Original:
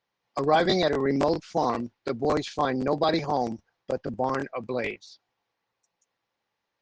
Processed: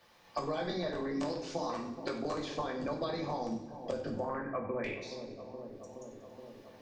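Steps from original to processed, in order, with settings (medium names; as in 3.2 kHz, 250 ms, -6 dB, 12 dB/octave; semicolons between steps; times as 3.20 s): 1.20–2.35 s: tilt EQ +2 dB/octave; 4.23–4.84 s: steep low-pass 2 kHz 48 dB/octave; compression 5:1, threshold -31 dBFS, peak gain reduction 13.5 dB; two-band feedback delay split 910 Hz, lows 422 ms, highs 93 ms, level -15.5 dB; reverberation RT60 0.55 s, pre-delay 3 ms, DRR 0 dB; three bands compressed up and down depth 70%; trim -5.5 dB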